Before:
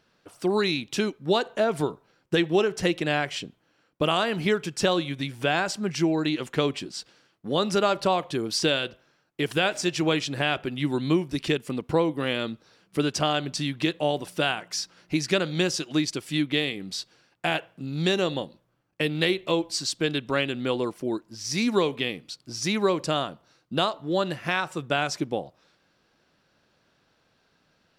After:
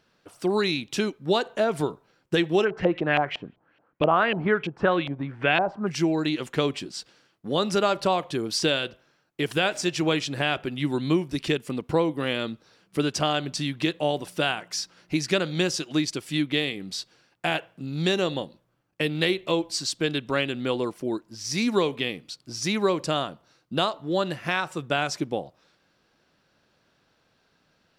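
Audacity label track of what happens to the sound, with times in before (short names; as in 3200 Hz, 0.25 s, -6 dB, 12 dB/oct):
2.640000	5.860000	LFO low-pass saw up 7.4 Hz -> 1.5 Hz 640–3000 Hz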